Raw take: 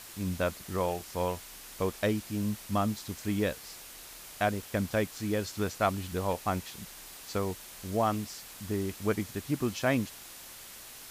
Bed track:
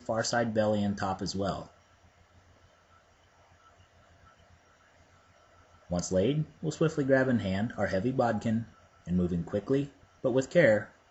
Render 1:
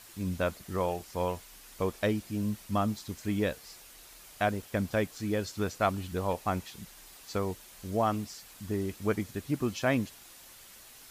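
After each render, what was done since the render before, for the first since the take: denoiser 6 dB, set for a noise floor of -48 dBFS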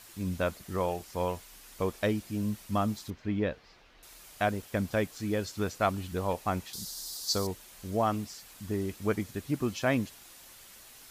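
3.1–4.03 air absorption 250 m; 6.73–7.47 resonant high shelf 3400 Hz +10.5 dB, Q 3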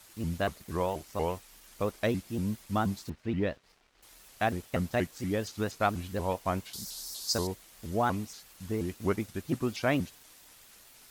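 crossover distortion -59 dBFS; shaped vibrato saw up 4.2 Hz, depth 250 cents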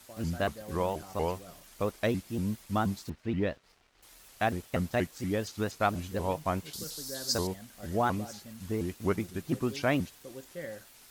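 add bed track -18.5 dB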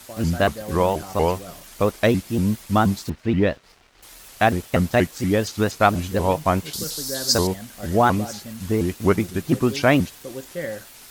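gain +11 dB

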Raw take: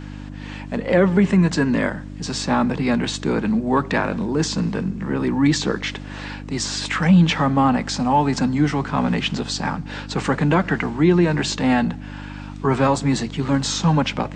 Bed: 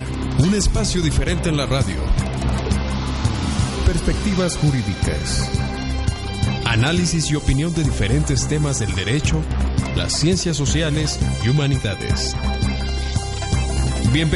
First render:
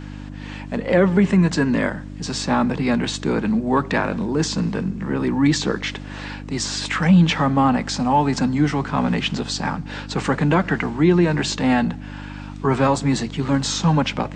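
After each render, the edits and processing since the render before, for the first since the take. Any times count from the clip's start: nothing audible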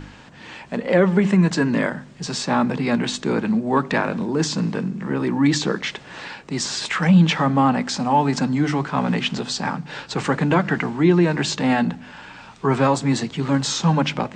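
de-hum 50 Hz, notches 6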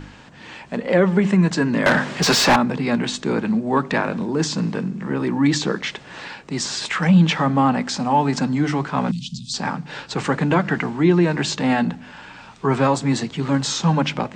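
1.86–2.56 overdrive pedal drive 30 dB, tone 3200 Hz, clips at -5.5 dBFS; 9.11–9.54 inverse Chebyshev band-stop 390–1800 Hz, stop band 50 dB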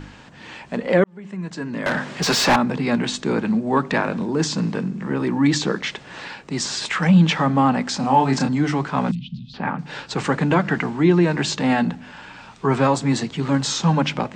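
1.04–2.78 fade in linear; 8–8.49 doubler 30 ms -4.5 dB; 9.15–9.79 LPF 2800 Hz 24 dB/oct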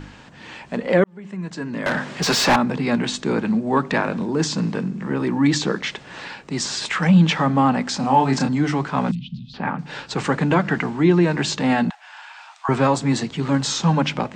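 11.9–12.69 steep high-pass 660 Hz 72 dB/oct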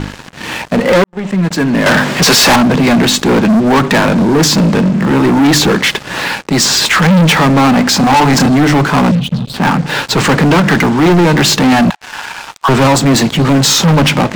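sample leveller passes 5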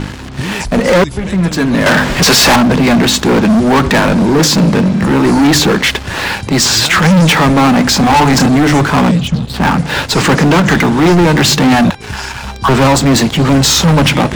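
add bed -5 dB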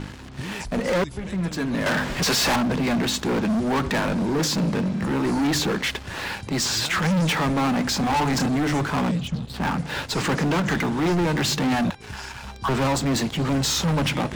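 gain -13.5 dB

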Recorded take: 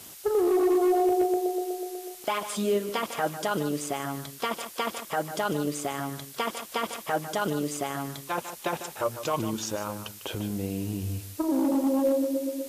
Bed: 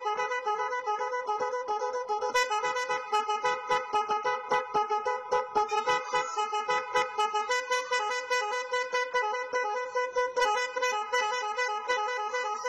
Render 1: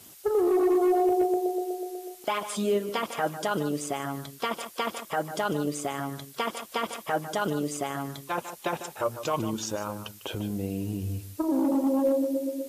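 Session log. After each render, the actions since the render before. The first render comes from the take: denoiser 6 dB, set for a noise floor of -46 dBFS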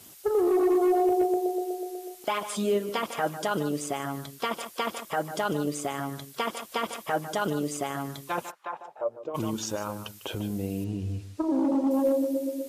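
8.5–9.34 band-pass 1500 Hz -> 370 Hz, Q 2.4; 10.84–11.91 air absorption 75 m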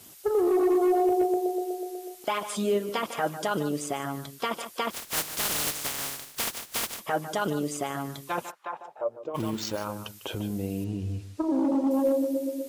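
4.9–6.99 spectral contrast lowered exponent 0.15; 9.36–9.85 careless resampling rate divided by 4×, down none, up hold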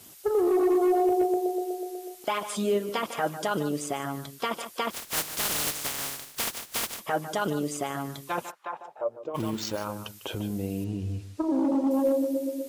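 nothing audible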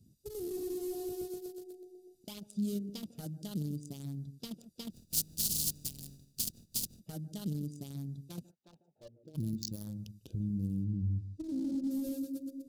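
Wiener smoothing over 41 samples; EQ curve 190 Hz 0 dB, 440 Hz -19 dB, 1000 Hz -29 dB, 2000 Hz -27 dB, 4500 Hz +2 dB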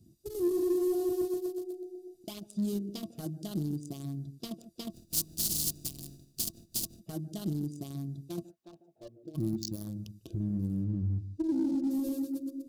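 small resonant body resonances 340/670/1100 Hz, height 14 dB, ringing for 95 ms; in parallel at -11 dB: overloaded stage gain 32.5 dB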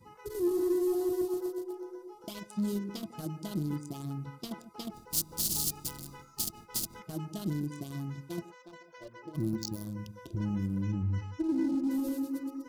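add bed -24 dB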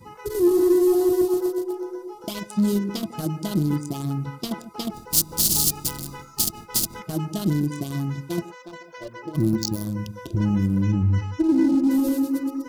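gain +11 dB

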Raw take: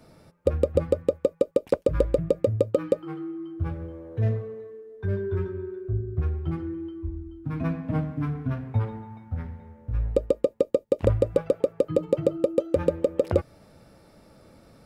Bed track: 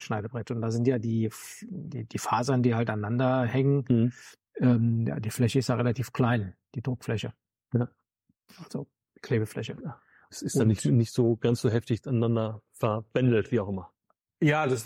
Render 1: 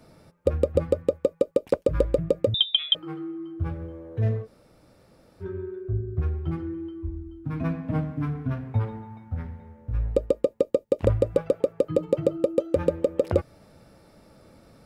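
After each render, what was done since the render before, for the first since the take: 2.54–2.95 inverted band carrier 3700 Hz; 4.45–5.43 room tone, crossfade 0.06 s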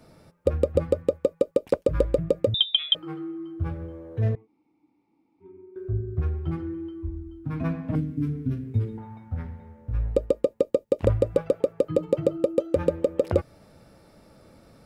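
4.35–5.76 vowel filter u; 7.95–8.98 EQ curve 190 Hz 0 dB, 390 Hz +6 dB, 590 Hz -16 dB, 870 Hz -22 dB, 1200 Hz -16 dB, 2100 Hz -8 dB, 7700 Hz +4 dB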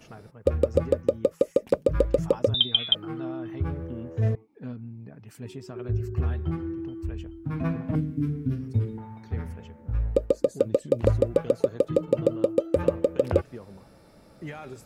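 add bed track -15 dB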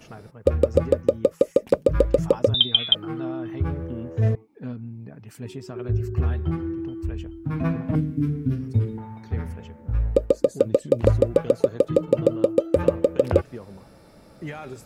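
gain +3.5 dB

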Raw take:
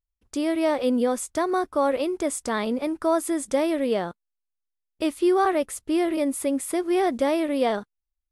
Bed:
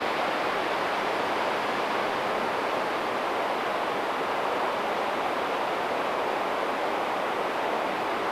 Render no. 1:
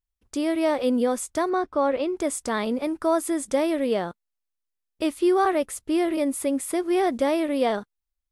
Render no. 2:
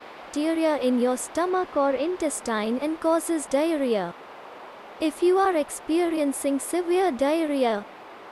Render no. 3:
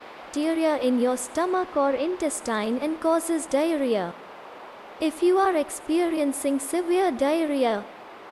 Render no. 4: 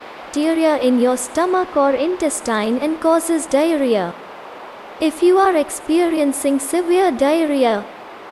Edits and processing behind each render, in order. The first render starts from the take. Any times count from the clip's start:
1.49–2.17 air absorption 100 m
add bed -15 dB
feedback echo 91 ms, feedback 58%, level -22 dB
gain +7.5 dB

